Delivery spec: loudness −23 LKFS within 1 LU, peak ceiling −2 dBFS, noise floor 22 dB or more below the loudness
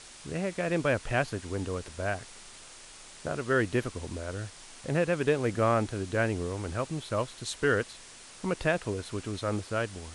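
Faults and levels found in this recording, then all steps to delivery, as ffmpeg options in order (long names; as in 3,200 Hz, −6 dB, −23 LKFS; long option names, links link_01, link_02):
background noise floor −50 dBFS; target noise floor −53 dBFS; integrated loudness −31.0 LKFS; sample peak −12.0 dBFS; target loudness −23.0 LKFS
→ -af "afftdn=noise_reduction=6:noise_floor=-50"
-af "volume=8dB"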